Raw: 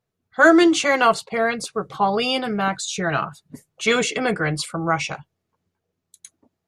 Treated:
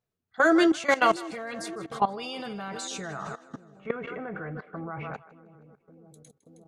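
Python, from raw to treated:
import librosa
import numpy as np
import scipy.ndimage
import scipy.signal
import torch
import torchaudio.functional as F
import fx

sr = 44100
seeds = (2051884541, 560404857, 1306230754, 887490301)

y = fx.lowpass(x, sr, hz=1700.0, slope=24, at=(3.11, 5.14))
y = fx.echo_split(y, sr, split_hz=530.0, low_ms=573, high_ms=158, feedback_pct=52, wet_db=-13.0)
y = fx.level_steps(y, sr, step_db=17)
y = F.gain(torch.from_numpy(y), -2.0).numpy()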